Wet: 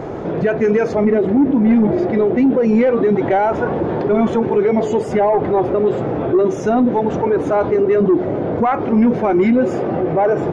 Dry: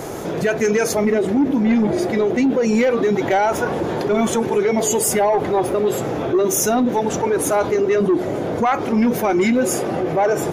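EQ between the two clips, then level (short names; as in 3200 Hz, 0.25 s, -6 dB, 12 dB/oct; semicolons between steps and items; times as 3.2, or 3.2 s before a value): tape spacing loss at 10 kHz 38 dB; +4.5 dB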